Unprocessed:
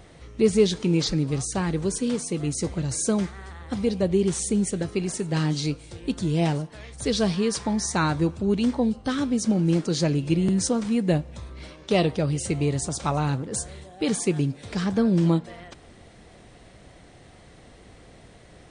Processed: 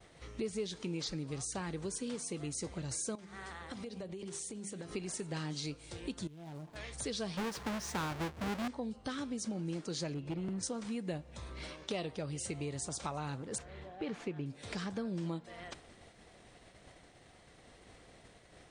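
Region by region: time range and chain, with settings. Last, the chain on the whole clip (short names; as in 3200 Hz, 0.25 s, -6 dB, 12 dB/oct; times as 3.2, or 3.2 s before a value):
3.15–4.91 HPF 100 Hz + notches 50/100/150/200/250/300/350/400 Hz + compressor 10:1, threshold -35 dBFS
6.27–6.76 median filter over 25 samples + bell 480 Hz -8 dB 0.22 oct + compressor 16:1, threshold -37 dBFS
7.37–8.68 half-waves squared off + LPF 3400 Hz 6 dB/oct
10.14–10.63 LPF 1800 Hz 6 dB/oct + hard clip -18 dBFS
13.58–14.46 CVSD 64 kbps + LPF 2400 Hz
whole clip: expander -43 dBFS; low shelf 380 Hz -6.5 dB; compressor 3:1, threshold -40 dBFS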